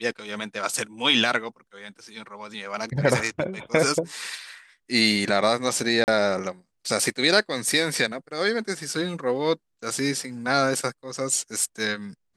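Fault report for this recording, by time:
0:06.04–0:06.08: drop-out 39 ms

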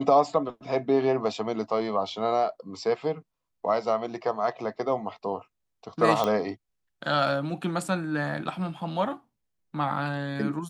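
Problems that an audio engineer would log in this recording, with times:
0:06.24: click −13 dBFS

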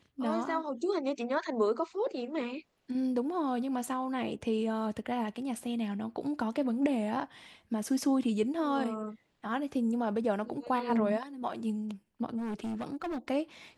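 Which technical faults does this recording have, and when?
0:12.37–0:13.19: clipping −32.5 dBFS

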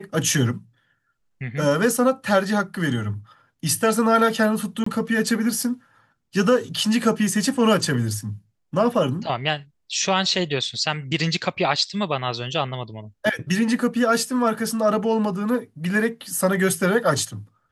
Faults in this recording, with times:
0:04.84–0:04.86: drop-out 24 ms

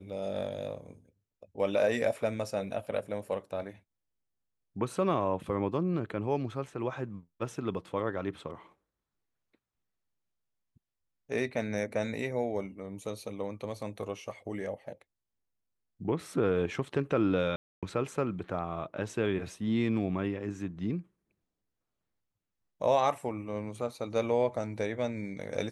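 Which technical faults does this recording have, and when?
0:17.56–0:17.83: drop-out 266 ms

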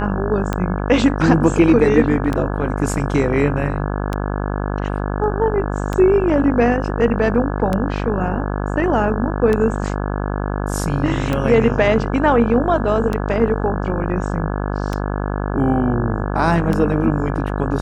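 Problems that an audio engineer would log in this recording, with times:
mains buzz 50 Hz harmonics 34 −22 dBFS
scratch tick 33 1/3 rpm −8 dBFS

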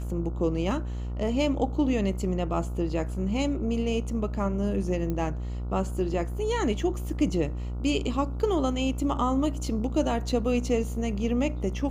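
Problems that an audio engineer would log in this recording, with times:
mains buzz 60 Hz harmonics 24 −32 dBFS
0:05.10: click −19 dBFS

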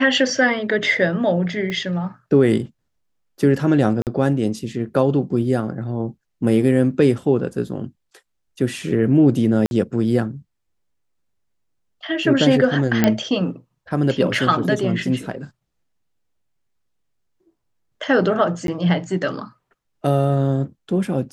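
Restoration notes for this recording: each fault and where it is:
0:01.70: click −15 dBFS
0:04.02–0:04.07: drop-out 48 ms
0:09.66–0:09.71: drop-out 51 ms
0:13.04: click −2 dBFS
0:18.67–0:18.68: drop-out 12 ms

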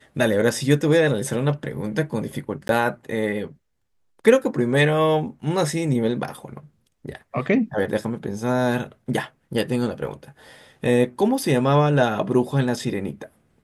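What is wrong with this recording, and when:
0:02.68–0:02.69: drop-out 12 ms

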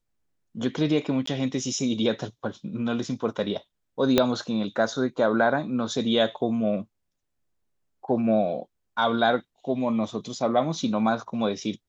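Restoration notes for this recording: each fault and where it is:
0:01.26–0:01.27: drop-out 14 ms
0:04.18: click −5 dBFS

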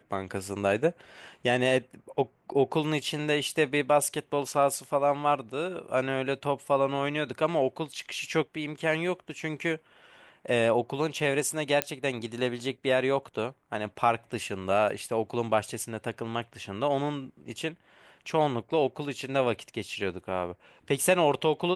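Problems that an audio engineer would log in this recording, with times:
0:11.82: click −8 dBFS

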